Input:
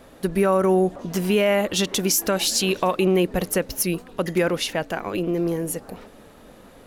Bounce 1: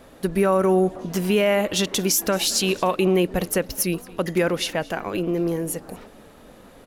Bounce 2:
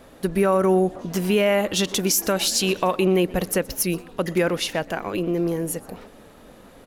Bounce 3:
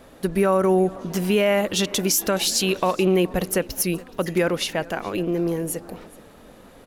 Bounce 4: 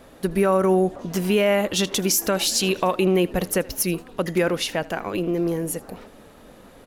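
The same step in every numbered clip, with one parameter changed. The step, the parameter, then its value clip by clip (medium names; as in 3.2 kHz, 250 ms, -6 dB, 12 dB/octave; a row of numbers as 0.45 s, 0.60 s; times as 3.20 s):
delay, time: 224 ms, 122 ms, 422 ms, 79 ms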